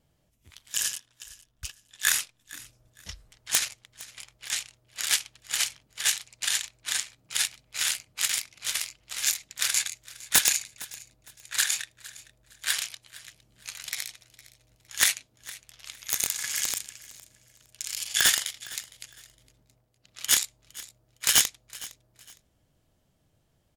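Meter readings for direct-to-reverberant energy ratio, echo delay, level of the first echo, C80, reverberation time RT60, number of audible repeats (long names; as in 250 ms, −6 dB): no reverb audible, 460 ms, −19.5 dB, no reverb audible, no reverb audible, 2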